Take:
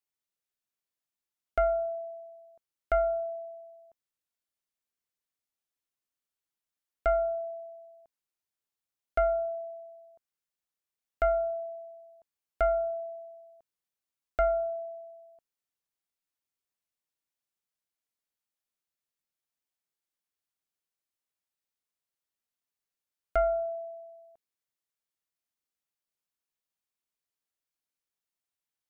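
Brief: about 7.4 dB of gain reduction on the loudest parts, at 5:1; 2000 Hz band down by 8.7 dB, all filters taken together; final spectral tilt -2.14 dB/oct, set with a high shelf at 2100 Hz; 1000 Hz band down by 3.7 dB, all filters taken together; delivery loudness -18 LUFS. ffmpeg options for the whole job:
-af "equalizer=f=1k:t=o:g=-4,equalizer=f=2k:t=o:g=-6.5,highshelf=f=2.1k:g=-8,acompressor=threshold=-32dB:ratio=5,volume=21dB"

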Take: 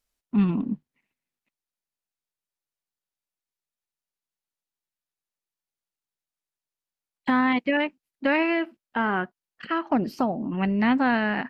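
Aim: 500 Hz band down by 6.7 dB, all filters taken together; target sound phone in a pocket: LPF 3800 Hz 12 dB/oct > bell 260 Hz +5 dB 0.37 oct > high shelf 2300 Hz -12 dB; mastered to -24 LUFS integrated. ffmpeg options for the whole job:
-af "lowpass=3.8k,equalizer=f=260:t=o:w=0.37:g=5,equalizer=f=500:t=o:g=-9,highshelf=f=2.3k:g=-12,volume=2dB"

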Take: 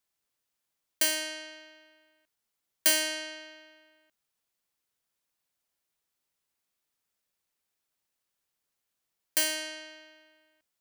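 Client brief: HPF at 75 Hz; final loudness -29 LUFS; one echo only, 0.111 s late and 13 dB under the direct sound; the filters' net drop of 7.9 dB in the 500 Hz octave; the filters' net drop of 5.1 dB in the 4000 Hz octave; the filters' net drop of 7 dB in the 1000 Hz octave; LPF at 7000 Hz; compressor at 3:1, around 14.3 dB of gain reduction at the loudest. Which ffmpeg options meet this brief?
-af "highpass=75,lowpass=7k,equalizer=f=500:t=o:g=-8.5,equalizer=f=1k:t=o:g=-5.5,equalizer=f=4k:t=o:g=-6,acompressor=threshold=-46dB:ratio=3,aecho=1:1:111:0.224,volume=18dB"

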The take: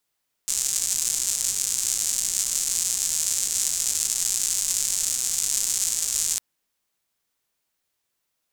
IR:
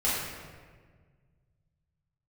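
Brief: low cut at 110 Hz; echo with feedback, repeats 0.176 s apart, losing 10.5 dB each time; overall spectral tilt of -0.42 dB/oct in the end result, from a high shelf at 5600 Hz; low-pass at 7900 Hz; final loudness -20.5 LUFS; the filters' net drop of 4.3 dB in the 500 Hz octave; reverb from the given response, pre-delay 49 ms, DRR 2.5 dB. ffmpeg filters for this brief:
-filter_complex "[0:a]highpass=110,lowpass=7.9k,equalizer=f=500:t=o:g=-5.5,highshelf=f=5.6k:g=-8,aecho=1:1:176|352|528:0.299|0.0896|0.0269,asplit=2[a][b];[1:a]atrim=start_sample=2205,adelay=49[c];[b][c]afir=irnorm=-1:irlink=0,volume=-13.5dB[d];[a][d]amix=inputs=2:normalize=0,volume=7dB"

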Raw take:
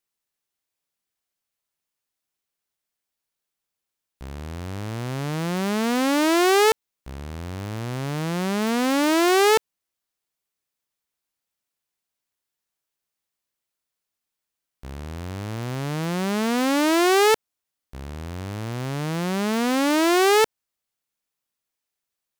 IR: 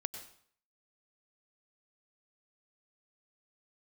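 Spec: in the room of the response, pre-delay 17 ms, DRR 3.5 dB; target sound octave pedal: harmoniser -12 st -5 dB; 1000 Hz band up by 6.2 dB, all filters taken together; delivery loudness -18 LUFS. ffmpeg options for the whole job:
-filter_complex "[0:a]equalizer=f=1k:t=o:g=8,asplit=2[a][b];[1:a]atrim=start_sample=2205,adelay=17[c];[b][c]afir=irnorm=-1:irlink=0,volume=-3dB[d];[a][d]amix=inputs=2:normalize=0,asplit=2[e][f];[f]asetrate=22050,aresample=44100,atempo=2,volume=-5dB[g];[e][g]amix=inputs=2:normalize=0,volume=-1.5dB"

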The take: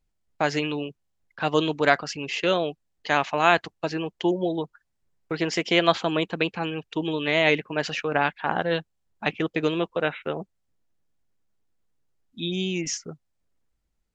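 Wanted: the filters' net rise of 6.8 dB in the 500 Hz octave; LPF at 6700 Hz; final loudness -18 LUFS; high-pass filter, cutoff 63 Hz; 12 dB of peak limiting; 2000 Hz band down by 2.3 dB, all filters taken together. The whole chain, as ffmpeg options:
-af "highpass=63,lowpass=6.7k,equalizer=f=500:t=o:g=8.5,equalizer=f=2k:t=o:g=-3.5,volume=8dB,alimiter=limit=-5.5dB:level=0:latency=1"

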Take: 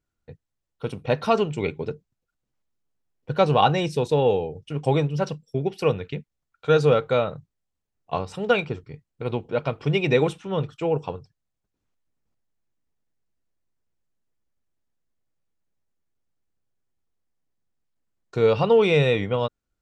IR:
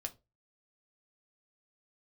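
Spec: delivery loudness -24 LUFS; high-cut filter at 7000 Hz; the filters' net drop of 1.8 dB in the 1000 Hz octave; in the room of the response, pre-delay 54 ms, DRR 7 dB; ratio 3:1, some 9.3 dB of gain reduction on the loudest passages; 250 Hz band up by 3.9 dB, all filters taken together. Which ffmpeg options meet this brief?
-filter_complex "[0:a]lowpass=7k,equalizer=f=250:t=o:g=6,equalizer=f=1k:t=o:g=-3,acompressor=threshold=-25dB:ratio=3,asplit=2[a][b];[1:a]atrim=start_sample=2205,adelay=54[c];[b][c]afir=irnorm=-1:irlink=0,volume=-5.5dB[d];[a][d]amix=inputs=2:normalize=0,volume=4.5dB"

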